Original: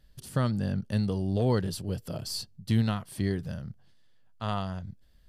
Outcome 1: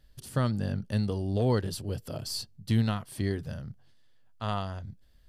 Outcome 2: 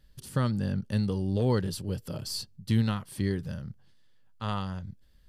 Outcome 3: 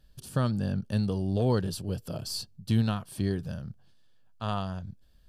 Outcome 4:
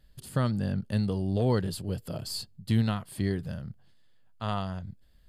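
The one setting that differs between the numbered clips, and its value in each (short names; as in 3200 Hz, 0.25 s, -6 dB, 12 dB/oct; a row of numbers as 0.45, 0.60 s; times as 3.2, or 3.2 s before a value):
notch, frequency: 180, 680, 2000, 5800 Hz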